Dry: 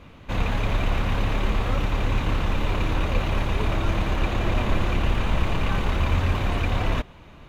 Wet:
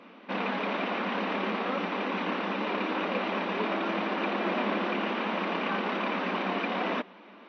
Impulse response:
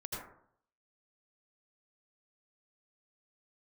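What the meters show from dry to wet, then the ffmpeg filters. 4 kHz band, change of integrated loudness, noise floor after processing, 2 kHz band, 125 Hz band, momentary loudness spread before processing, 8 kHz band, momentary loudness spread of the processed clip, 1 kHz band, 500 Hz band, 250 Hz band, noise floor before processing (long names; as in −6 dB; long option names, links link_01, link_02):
−3.0 dB, −4.5 dB, −51 dBFS, −0.5 dB, −19.5 dB, 2 LU, can't be measured, 2 LU, 0.0 dB, 0.0 dB, −1.5 dB, −46 dBFS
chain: -af "bass=frequency=250:gain=-2,treble=frequency=4000:gain=-13,afftfilt=real='re*between(b*sr/4096,180,6100)':imag='im*between(b*sr/4096,180,6100)':win_size=4096:overlap=0.75" -ar 16000 -c:a libvorbis -b:a 48k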